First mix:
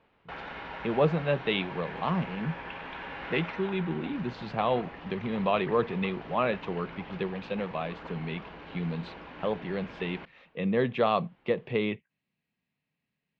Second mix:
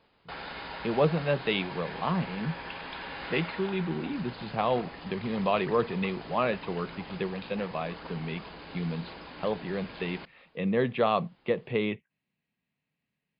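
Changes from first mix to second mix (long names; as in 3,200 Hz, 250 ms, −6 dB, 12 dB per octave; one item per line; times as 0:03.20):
background: remove low-pass filter 3,000 Hz 24 dB per octave
master: add linear-phase brick-wall low-pass 5,100 Hz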